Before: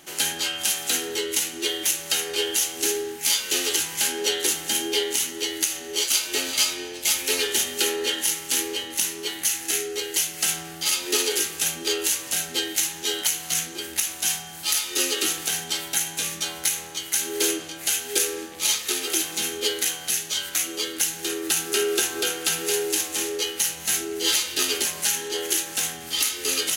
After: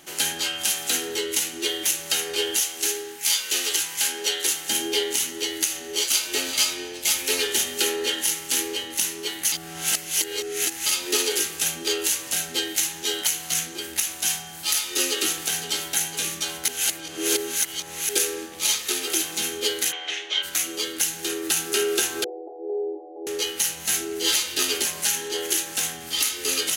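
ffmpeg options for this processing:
-filter_complex "[0:a]asettb=1/sr,asplit=3[a][b][c];[a]atrim=end=2.604[d];[b]atrim=start=2.6:end=4.69,asetpts=PTS-STARTPTS,afade=t=in:d=0.004:c=qsin,afade=t=out:st=2.086:d=0.004:c=qsin,lowshelf=f=480:g=-10[e];[c]atrim=start=4.686[f];[d][e]acrossfade=d=0.004:c1=hsin:c2=qsin[g];[g][f]acrossfade=d=0.004:c1=qsin:c2=hsin,asplit=2[h][i];[i]afade=t=in:st=15.1:d=0.01,afade=t=out:st=15.55:d=0.01,aecho=0:1:510|1020|1530|2040|2550|3060|3570|4080|4590|5100:0.281838|0.197287|0.138101|0.0966705|0.0676694|0.0473686|0.033158|0.0232106|0.0162474|0.0113732[j];[h][j]amix=inputs=2:normalize=0,asplit=3[k][l][m];[k]afade=t=out:st=19.91:d=0.02[n];[l]highpass=f=330:w=0.5412,highpass=f=330:w=1.3066,equalizer=f=380:t=q:w=4:g=6,equalizer=f=760:t=q:w=4:g=3,equalizer=f=2.1k:t=q:w=4:g=7,equalizer=f=3.2k:t=q:w=4:g=6,equalizer=f=4.7k:t=q:w=4:g=-9,lowpass=f=4.8k:w=0.5412,lowpass=f=4.8k:w=1.3066,afade=t=in:st=19.91:d=0.02,afade=t=out:st=20.42:d=0.02[o];[m]afade=t=in:st=20.42:d=0.02[p];[n][o][p]amix=inputs=3:normalize=0,asettb=1/sr,asplit=3[q][r][s];[q]atrim=end=22.244[t];[r]atrim=start=22.24:end=23.27,asetpts=PTS-STARTPTS,afade=t=in:d=0.004:c=qsin,afade=t=out:st=1.026:d=0.004:c=qsin,asuperpass=centerf=510:order=12:qfactor=1.1[u];[s]atrim=start=23.266[v];[t][u]acrossfade=d=0.004:c1=hsin:c2=qsin[w];[w][v]acrossfade=d=0.004:c1=qsin:c2=hsin,asplit=5[x][y][z][aa][ab];[x]atrim=end=9.522[ac];[y]atrim=start=9.518:end=10.862,asetpts=PTS-STARTPTS,areverse[ad];[z]atrim=start=10.858:end=16.682[ae];[aa]atrim=start=16.678:end=18.092,asetpts=PTS-STARTPTS,areverse[af];[ab]atrim=start=18.088[ag];[ac][ad]acrossfade=d=0.004:c1=hsin:c2=hsin[ah];[ah][ae]acrossfade=d=0.004:c1=hsin:c2=hsin[ai];[ai][af]acrossfade=d=0.004:c1=hsin:c2=hsin[aj];[aj][ag]acrossfade=d=0.004:c1=hsin:c2=hsin"

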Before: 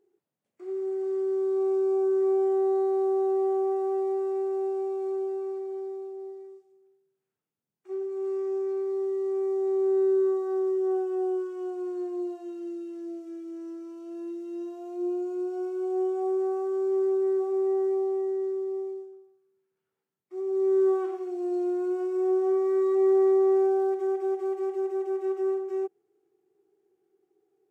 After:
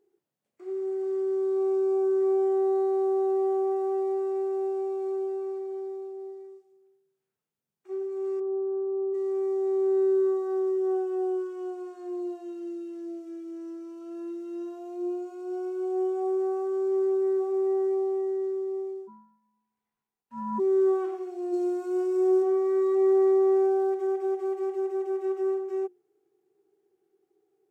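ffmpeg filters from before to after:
-filter_complex "[0:a]asplit=3[a][b][c];[a]afade=t=out:st=8.39:d=0.02[d];[b]lowpass=f=1.1k:w=0.5412,lowpass=f=1.1k:w=1.3066,afade=t=in:st=8.39:d=0.02,afade=t=out:st=9.13:d=0.02[e];[c]afade=t=in:st=9.13:d=0.02[f];[d][e][f]amix=inputs=3:normalize=0,asettb=1/sr,asplit=3[g][h][i];[g]atrim=end=14.014[j];[h]atrim=start=14.01:end=14.79,asetpts=PTS-STARTPTS,afade=t=in:d=0.004:c=qsin,afade=t=out:st=0.776:d=0.004:c=qsin,equalizer=f=1.3k:t=o:w=0.48:g=7[k];[i]atrim=start=14.786[l];[j][k]acrossfade=d=0.004:c1=hsin:c2=qsin[m];[m][l]acrossfade=d=0.004:c1=qsin:c2=hsin,asplit=3[n][o][p];[n]afade=t=out:st=19.07:d=0.02[q];[o]aeval=exprs='val(0)*sin(2*PI*600*n/s)':c=same,afade=t=in:st=19.07:d=0.02,afade=t=out:st=20.58:d=0.02[r];[p]afade=t=in:st=20.58:d=0.02[s];[q][r][s]amix=inputs=3:normalize=0,asplit=3[t][u][v];[t]afade=t=out:st=21.52:d=0.02[w];[u]bass=f=250:g=14,treble=f=4k:g=7,afade=t=in:st=21.52:d=0.02,afade=t=out:st=22.42:d=0.02[x];[v]afade=t=in:st=22.42:d=0.02[y];[w][x][y]amix=inputs=3:normalize=0,bandreject=f=60:t=h:w=6,bandreject=f=120:t=h:w=6,bandreject=f=180:t=h:w=6,bandreject=f=240:t=h:w=6,bandreject=f=300:t=h:w=6,bandreject=f=360:t=h:w=6"

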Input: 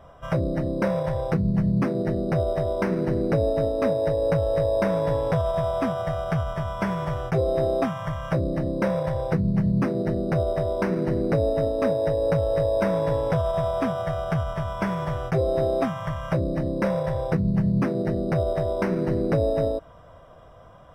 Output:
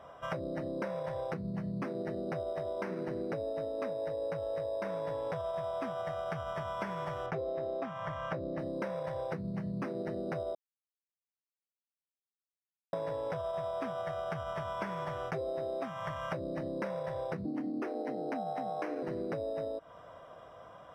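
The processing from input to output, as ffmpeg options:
-filter_complex "[0:a]asettb=1/sr,asplit=3[a][b][c];[a]atrim=end=7.264[d];[b]atrim=start=7.26:end=8.59,asetpts=PTS-STARTPTS,afade=t=in:d=0.004:c=qsin,afade=t=out:st=1.326:d=0.004:c=qsin,aemphasis=mode=reproduction:type=50fm[e];[c]atrim=start=8.586[f];[d][e]acrossfade=d=0.004:c1=hsin:c2=qsin[g];[g][f]acrossfade=d=0.004:c1=qsin:c2=hsin,asettb=1/sr,asplit=3[h][i][j];[h]atrim=end=17.454[k];[i]atrim=start=17.45:end=19.03,asetpts=PTS-STARTPTS,afade=t=in:d=0.004:c=qsin,afade=t=out:st=1.576:d=0.004:c=qsin,afreqshift=110[l];[j]atrim=start=19.026[m];[k][l]acrossfade=d=0.004:c1=hsin:c2=qsin[n];[n][m]acrossfade=d=0.004:c1=qsin:c2=hsin,asplit=3[o][p][q];[o]atrim=end=10.55,asetpts=PTS-STARTPTS,afade=t=out:st=10.546:d=0.004:c=hsin[r];[p]atrim=start=10.55:end=12.93,asetpts=PTS-STARTPTS,volume=0[s];[q]atrim=start=12.93,asetpts=PTS-STARTPTS,afade=t=in:d=0.004:c=hsin[t];[r][s][t]concat=n=3:v=0:a=1,highpass=f=390:p=1,highshelf=f=8.1k:g=-7.5,acompressor=threshold=-34dB:ratio=6"

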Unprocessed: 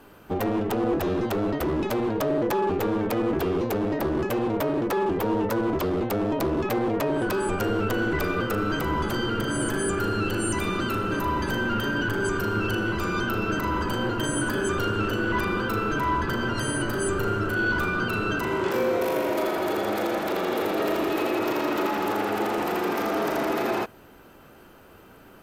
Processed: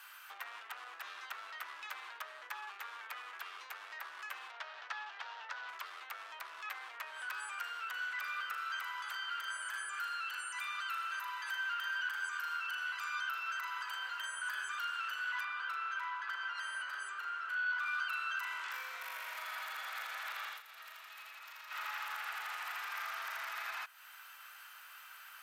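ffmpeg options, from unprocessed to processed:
-filter_complex "[0:a]asettb=1/sr,asplit=3[a][b][c];[a]atrim=end=4.514[d];[b]atrim=start=4.51:end=5.69,asetpts=PTS-STARTPTS,afade=t=in:d=0.004:c=qsin,afade=t=out:st=1.176:d=0.004:c=qsin,highpass=490,equalizer=f=710:t=q:w=4:g=5,equalizer=f=1.1k:t=q:w=4:g=-5,equalizer=f=2.2k:t=q:w=4:g=-4,lowpass=f=5.7k:w=0.5412,lowpass=f=5.7k:w=1.3066[e];[c]atrim=start=5.686[f];[d][e]acrossfade=d=0.004:c1=hsin:c2=qsin[g];[g][f]acrossfade=d=0.004:c1=qsin:c2=hsin,asettb=1/sr,asplit=3[h][i][j];[h]atrim=end=15.434[k];[i]atrim=start=15.43:end=17.86,asetpts=PTS-STARTPTS,afade=t=in:d=0.004:c=qsin,afade=t=out:st=2.426:d=0.004:c=qsin,aemphasis=mode=reproduction:type=75fm[l];[j]atrim=start=17.856[m];[k][l]acrossfade=d=0.004:c1=hsin:c2=qsin[n];[n][m]acrossfade=d=0.004:c1=qsin:c2=hsin,asplit=3[o][p][q];[o]atrim=end=20.62,asetpts=PTS-STARTPTS,afade=t=out:st=20.45:d=0.17:silence=0.0944061[r];[p]atrim=start=20.62:end=21.69,asetpts=PTS-STARTPTS,volume=-20.5dB[s];[q]atrim=start=21.69,asetpts=PTS-STARTPTS,afade=t=in:d=0.17:silence=0.0944061[t];[r][s][t]concat=n=3:v=0:a=1,acompressor=threshold=-38dB:ratio=2.5,highpass=f=1.3k:w=0.5412,highpass=f=1.3k:w=1.3066,acrossover=split=2700[u][v];[v]acompressor=threshold=-52dB:ratio=4:attack=1:release=60[w];[u][w]amix=inputs=2:normalize=0,volume=4dB"

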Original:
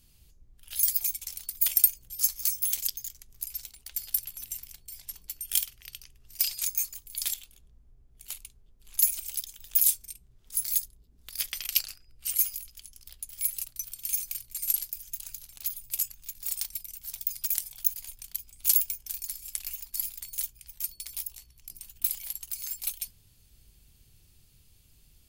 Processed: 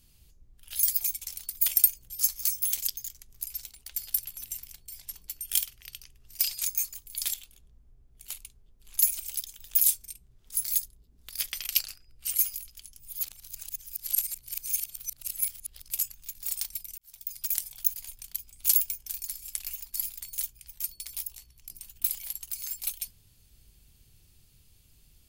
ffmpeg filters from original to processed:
-filter_complex "[0:a]asplit=4[a][b][c][d];[a]atrim=end=12.992[e];[b]atrim=start=12.988:end=15.902,asetpts=PTS-STARTPTS,areverse[f];[c]atrim=start=15.898:end=16.98,asetpts=PTS-STARTPTS,afade=t=out:st=1.078:d=0.004:c=hsin[g];[d]atrim=start=16.98,asetpts=PTS-STARTPTS,afade=t=in:d=0.57[h];[e][f]acrossfade=d=0.004:c1=hsin:c2=hsin[i];[g][h]concat=n=2:v=0:a=1[j];[i][j]acrossfade=d=0.004:c1=hsin:c2=hsin"

